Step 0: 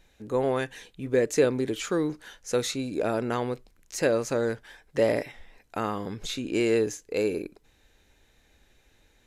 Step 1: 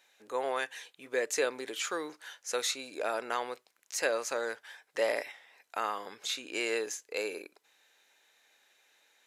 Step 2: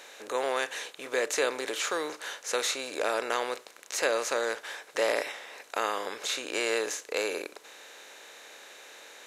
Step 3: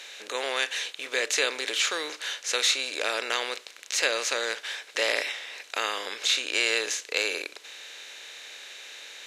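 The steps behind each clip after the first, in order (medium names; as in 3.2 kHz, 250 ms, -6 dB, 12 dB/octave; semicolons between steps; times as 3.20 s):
high-pass 750 Hz 12 dB/octave
spectral levelling over time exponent 0.6
frequency weighting D; trim -2.5 dB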